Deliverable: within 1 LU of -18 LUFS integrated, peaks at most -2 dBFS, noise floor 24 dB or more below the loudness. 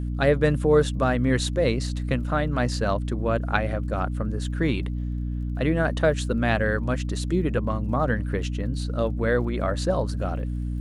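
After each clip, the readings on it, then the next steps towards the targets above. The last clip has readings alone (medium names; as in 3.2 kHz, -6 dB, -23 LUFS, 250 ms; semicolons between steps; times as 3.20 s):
tick rate 31 per s; hum 60 Hz; highest harmonic 300 Hz; hum level -25 dBFS; loudness -25.0 LUFS; peak level -6.0 dBFS; loudness target -18.0 LUFS
-> de-click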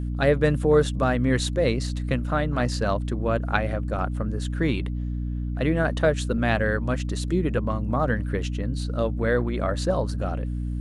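tick rate 0.093 per s; hum 60 Hz; highest harmonic 300 Hz; hum level -26 dBFS
-> de-hum 60 Hz, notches 5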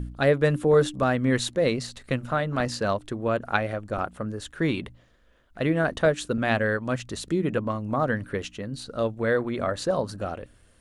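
hum not found; loudness -26.0 LUFS; peak level -6.5 dBFS; loudness target -18.0 LUFS
-> trim +8 dB; peak limiter -2 dBFS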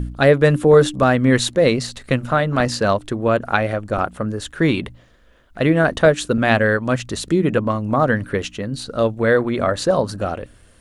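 loudness -18.5 LUFS; peak level -2.0 dBFS; noise floor -50 dBFS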